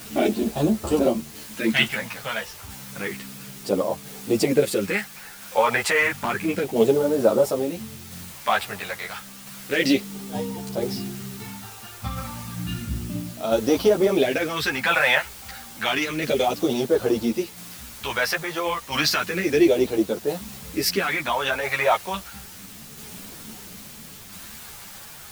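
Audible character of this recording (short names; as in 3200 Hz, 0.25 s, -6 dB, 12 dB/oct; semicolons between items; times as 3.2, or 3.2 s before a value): phasing stages 2, 0.31 Hz, lowest notch 280–2000 Hz; a quantiser's noise floor 8-bit, dither triangular; tremolo saw down 0.74 Hz, depth 30%; a shimmering, thickened sound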